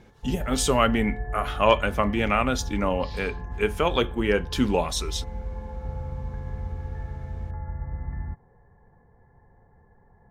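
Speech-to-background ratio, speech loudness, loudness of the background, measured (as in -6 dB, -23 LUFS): 10.5 dB, -25.0 LUFS, -35.5 LUFS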